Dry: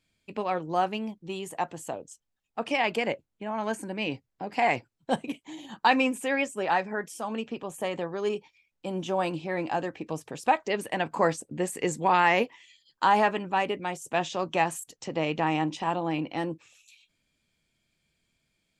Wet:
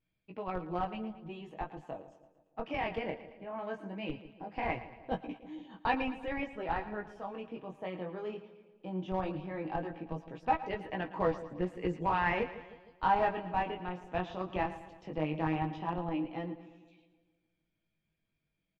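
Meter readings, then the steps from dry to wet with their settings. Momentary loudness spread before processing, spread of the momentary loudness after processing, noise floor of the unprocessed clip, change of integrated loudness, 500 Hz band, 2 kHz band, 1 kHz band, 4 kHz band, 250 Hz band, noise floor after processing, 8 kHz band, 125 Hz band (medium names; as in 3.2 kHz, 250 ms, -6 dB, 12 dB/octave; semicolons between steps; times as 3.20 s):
13 LU, 13 LU, -79 dBFS, -7.5 dB, -7.5 dB, -9.5 dB, -7.5 dB, -13.0 dB, -6.0 dB, -83 dBFS, under -30 dB, -3.0 dB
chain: bass shelf 400 Hz +2.5 dB; band-stop 4.2 kHz, Q 25; comb 6.3 ms, depth 34%; chorus 0.18 Hz, delay 16 ms, depth 6.4 ms; in parallel at -4 dB: Schmitt trigger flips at -21 dBFS; on the sum: vibrato 0.51 Hz 20 cents; distance through air 280 m; on a send: two-band feedback delay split 670 Hz, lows 155 ms, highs 113 ms, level -14 dB; on the sum: trim -5.5 dB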